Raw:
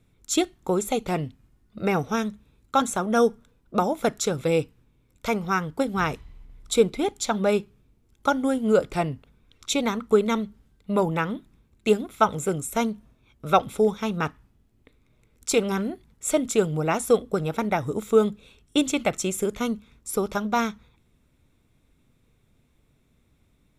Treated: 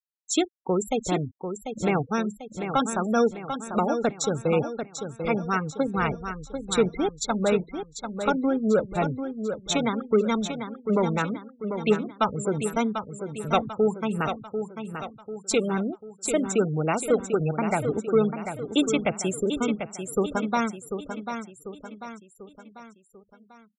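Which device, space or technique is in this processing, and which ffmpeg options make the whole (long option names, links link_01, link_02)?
one-band saturation: -filter_complex "[0:a]acrossover=split=300|2300[link_01][link_02][link_03];[link_02]asoftclip=type=tanh:threshold=-17dB[link_04];[link_01][link_04][link_03]amix=inputs=3:normalize=0,afftfilt=real='re*gte(hypot(re,im),0.0398)':imag='im*gte(hypot(re,im),0.0398)':win_size=1024:overlap=0.75,lowpass=9300,aecho=1:1:743|1486|2229|2972|3715:0.398|0.187|0.0879|0.0413|0.0194"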